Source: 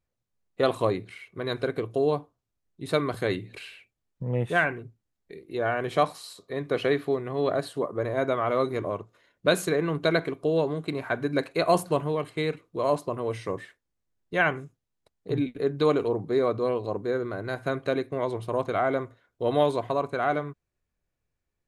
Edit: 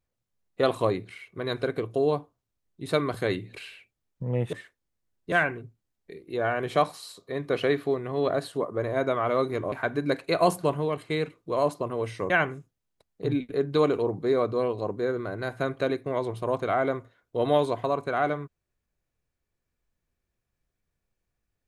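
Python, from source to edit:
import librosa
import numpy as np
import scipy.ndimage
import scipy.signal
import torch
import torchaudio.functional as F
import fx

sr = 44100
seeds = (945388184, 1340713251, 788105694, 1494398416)

y = fx.edit(x, sr, fx.cut(start_s=8.93, length_s=2.06),
    fx.move(start_s=13.57, length_s=0.79, to_s=4.53), tone=tone)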